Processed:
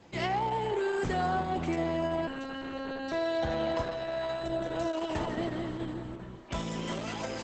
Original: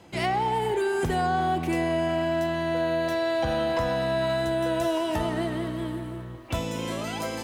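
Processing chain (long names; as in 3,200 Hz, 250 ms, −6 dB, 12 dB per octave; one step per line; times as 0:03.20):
0:02.27–0:03.12: phases set to zero 269 Hz
0:06.21–0:06.99: comb filter 5.1 ms, depth 52%
downsampling to 32,000 Hz
0:03.81–0:04.45: parametric band 180 Hz −7 dB 2.2 octaves
level −4 dB
Opus 10 kbit/s 48,000 Hz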